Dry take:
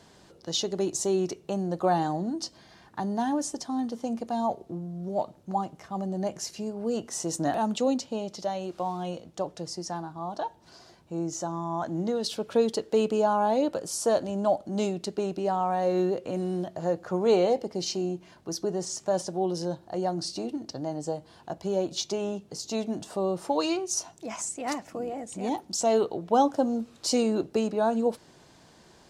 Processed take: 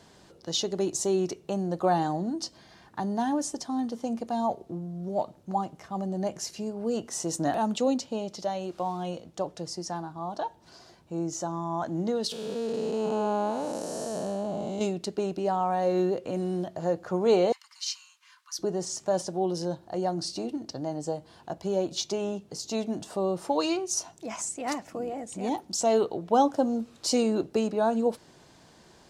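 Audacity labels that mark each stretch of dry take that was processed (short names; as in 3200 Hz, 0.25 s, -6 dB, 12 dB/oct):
12.320000	14.810000	time blur width 0.445 s
17.520000	18.590000	steep high-pass 1000 Hz 96 dB/oct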